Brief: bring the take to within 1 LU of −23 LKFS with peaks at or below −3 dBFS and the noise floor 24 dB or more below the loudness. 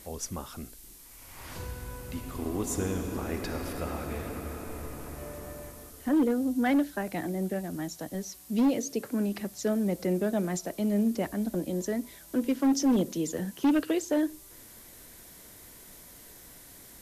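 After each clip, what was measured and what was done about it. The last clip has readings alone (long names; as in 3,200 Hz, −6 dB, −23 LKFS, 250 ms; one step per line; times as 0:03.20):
share of clipped samples 1.1%; peaks flattened at −19.5 dBFS; background noise floor −51 dBFS; target noise floor −55 dBFS; integrated loudness −30.5 LKFS; sample peak −19.5 dBFS; target loudness −23.0 LKFS
→ clipped peaks rebuilt −19.5 dBFS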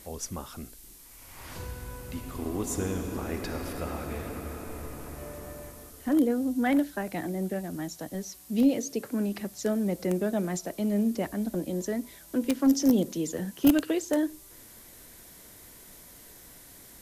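share of clipped samples 0.0%; background noise floor −51 dBFS; target noise floor −54 dBFS
→ noise reduction from a noise print 6 dB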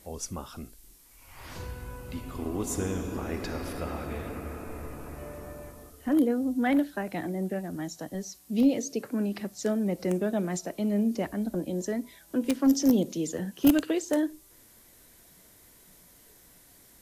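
background noise floor −57 dBFS; integrated loudness −29.5 LKFS; sample peak −10.5 dBFS; target loudness −23.0 LKFS
→ level +6.5 dB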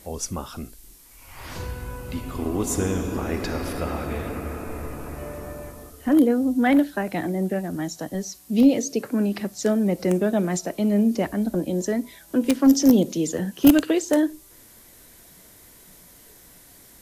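integrated loudness −23.0 LKFS; sample peak −4.0 dBFS; background noise floor −50 dBFS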